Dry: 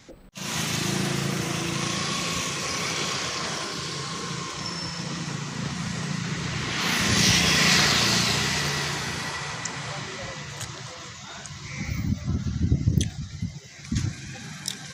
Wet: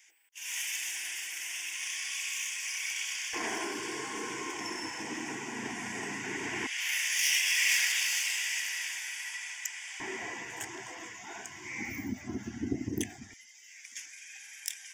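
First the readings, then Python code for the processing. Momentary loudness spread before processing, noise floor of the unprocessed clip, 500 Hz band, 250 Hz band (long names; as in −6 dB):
17 LU, −42 dBFS, −9.5 dB, −10.5 dB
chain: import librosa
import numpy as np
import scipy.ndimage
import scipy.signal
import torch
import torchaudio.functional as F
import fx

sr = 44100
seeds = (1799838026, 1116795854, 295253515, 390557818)

y = fx.tracing_dist(x, sr, depth_ms=0.023)
y = fx.filter_lfo_highpass(y, sr, shape='square', hz=0.15, low_hz=230.0, high_hz=2800.0, q=1.0)
y = fx.fixed_phaser(y, sr, hz=830.0, stages=8)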